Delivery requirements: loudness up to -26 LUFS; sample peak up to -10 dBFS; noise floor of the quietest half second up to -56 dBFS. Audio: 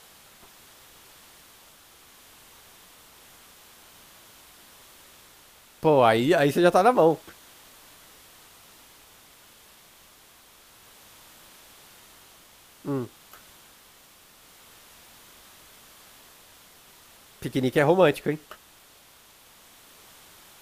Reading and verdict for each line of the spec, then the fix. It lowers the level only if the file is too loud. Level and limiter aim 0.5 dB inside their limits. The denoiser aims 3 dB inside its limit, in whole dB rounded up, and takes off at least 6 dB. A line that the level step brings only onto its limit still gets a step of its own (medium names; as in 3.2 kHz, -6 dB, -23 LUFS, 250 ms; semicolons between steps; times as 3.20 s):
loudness -22.0 LUFS: fail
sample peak -5.0 dBFS: fail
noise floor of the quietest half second -54 dBFS: fail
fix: trim -4.5 dB; peak limiter -10.5 dBFS